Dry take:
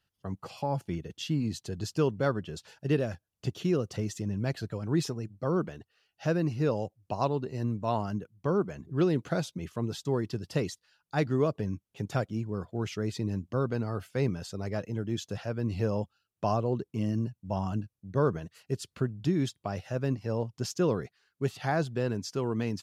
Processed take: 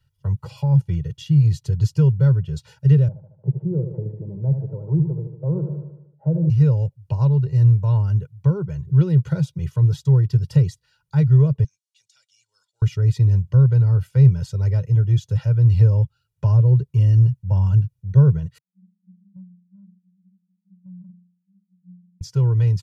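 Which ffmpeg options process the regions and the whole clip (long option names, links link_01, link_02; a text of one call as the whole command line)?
ffmpeg -i in.wav -filter_complex "[0:a]asettb=1/sr,asplit=3[link_01][link_02][link_03];[link_01]atrim=end=3.084[link_04];[link_02]atrim=start=3.08:end=6.5,asetpts=PTS-STARTPTS,afade=type=in:duration=0.004:curve=qsin,afade=type=out:start_time=3.416:duration=0.004:curve=qsin,asuperpass=centerf=350:order=8:qfactor=0.52,aecho=1:1:75|150|225|300|375|450|525:0.376|0.207|0.114|0.0625|0.0344|0.0189|0.0104,atrim=end_sample=150822[link_05];[link_03]atrim=start=6.496[link_06];[link_04][link_05]acrossfade=duration=0.004:curve1=hsin:curve2=qsin[link_07];[link_07][link_06]acrossfade=duration=0.004:curve1=qsin:curve2=hsin,asettb=1/sr,asplit=3[link_08][link_09][link_10];[link_08]atrim=end=11.644[link_11];[link_09]atrim=start=11.64:end=12.82,asetpts=PTS-STARTPTS,afade=type=in:duration=0.004:curve=qsin,afade=type=out:start_time=1.176:duration=0.004:curve=qsin,asuperpass=centerf=5800:order=4:qfactor=1.1,aecho=1:1:1.4:0.35,atrim=end_sample=52038,acompressor=threshold=-58dB:ratio=10:attack=3.2:release=140:knee=1:detection=peak[link_12];[link_10]atrim=start=12.816[link_13];[link_11][link_12]acrossfade=duration=0.004:curve1=hsin:curve2=qsin[link_14];[link_14][link_13]acrossfade=duration=0.004:curve1=qsin:curve2=hsin,asettb=1/sr,asplit=3[link_15][link_16][link_17];[link_15]atrim=end=18.584[link_18];[link_16]atrim=start=18.58:end=22.21,asetpts=PTS-STARTPTS,afade=type=in:duration=0.004:curve=qsin,afade=type=out:start_time=3.626:duration=0.004:curve=qsin,asuperpass=centerf=190:order=20:qfactor=7.1,acompressor=threshold=-43dB:ratio=4:attack=3.2:release=140:knee=1:detection=peak[link_19];[link_17]atrim=start=22.206[link_20];[link_18][link_19]acrossfade=duration=0.004:curve1=hsin:curve2=qsin[link_21];[link_21][link_20]acrossfade=duration=0.004:curve1=qsin:curve2=hsin,lowshelf=frequency=190:width_type=q:width=3:gain=11,aecho=1:1:2.1:0.97,acrossover=split=400[link_22][link_23];[link_23]acompressor=threshold=-41dB:ratio=2[link_24];[link_22][link_24]amix=inputs=2:normalize=0" out.wav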